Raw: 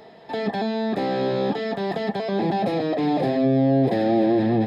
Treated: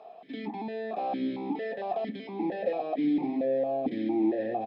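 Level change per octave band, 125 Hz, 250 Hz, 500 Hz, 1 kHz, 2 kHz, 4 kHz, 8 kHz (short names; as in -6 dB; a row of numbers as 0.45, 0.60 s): -20.5 dB, -8.0 dB, -8.0 dB, -7.5 dB, -10.0 dB, -14.5 dB, n/a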